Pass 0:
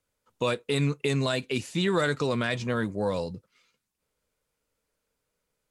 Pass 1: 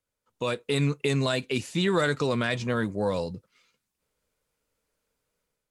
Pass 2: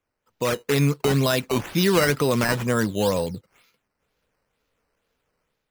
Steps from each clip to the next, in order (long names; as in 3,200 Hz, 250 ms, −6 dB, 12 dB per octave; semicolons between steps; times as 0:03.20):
automatic gain control gain up to 7 dB; level −6 dB
sample-and-hold swept by an LFO 9×, swing 100% 2.1 Hz; level +5 dB